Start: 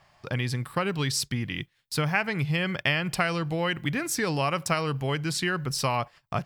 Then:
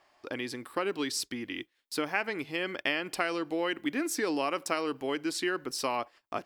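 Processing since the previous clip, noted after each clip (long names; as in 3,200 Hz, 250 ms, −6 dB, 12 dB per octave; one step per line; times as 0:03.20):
low shelf with overshoot 210 Hz −12 dB, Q 3
level −5 dB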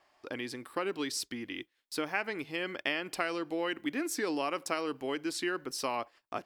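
tape wow and flutter 24 cents
level −2.5 dB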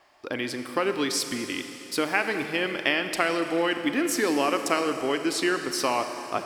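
four-comb reverb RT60 3.3 s, combs from 28 ms, DRR 7 dB
level +8 dB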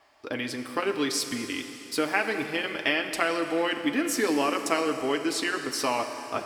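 notch comb filter 180 Hz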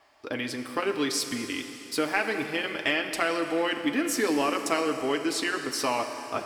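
soft clipping −11 dBFS, distortion −27 dB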